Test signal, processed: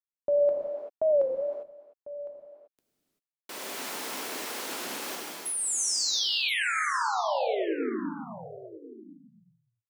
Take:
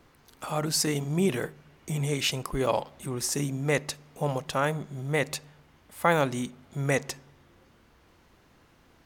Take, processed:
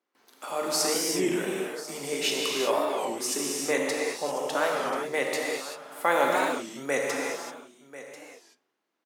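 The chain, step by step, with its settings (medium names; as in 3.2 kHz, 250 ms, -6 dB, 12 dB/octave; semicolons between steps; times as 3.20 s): high-pass 270 Hz 24 dB/octave; gate with hold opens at -49 dBFS; delay 1042 ms -15.5 dB; gated-style reverb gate 410 ms flat, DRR -2.5 dB; warped record 33 1/3 rpm, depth 160 cents; trim -2 dB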